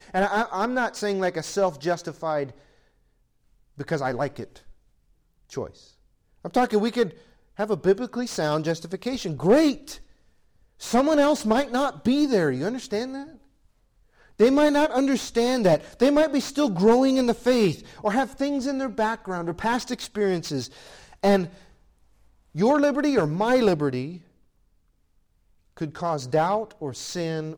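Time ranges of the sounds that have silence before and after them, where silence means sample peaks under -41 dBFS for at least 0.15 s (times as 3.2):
3.78–4.71
5.5–5.79
6.45–7.17
7.59–10.02
10.81–13.35
14.39–21.62
22.55–24.18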